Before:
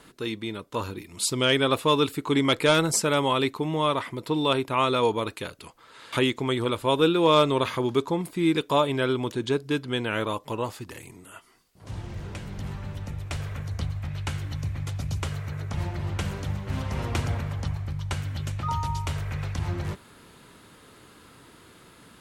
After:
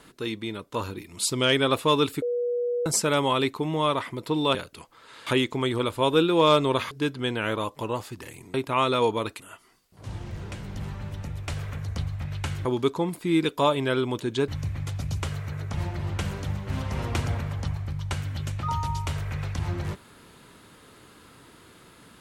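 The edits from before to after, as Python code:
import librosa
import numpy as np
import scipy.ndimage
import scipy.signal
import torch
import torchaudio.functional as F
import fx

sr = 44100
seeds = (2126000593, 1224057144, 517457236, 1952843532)

y = fx.edit(x, sr, fx.bleep(start_s=2.22, length_s=0.64, hz=484.0, db=-23.5),
    fx.move(start_s=4.55, length_s=0.86, to_s=11.23),
    fx.move(start_s=7.77, length_s=1.83, to_s=14.48), tone=tone)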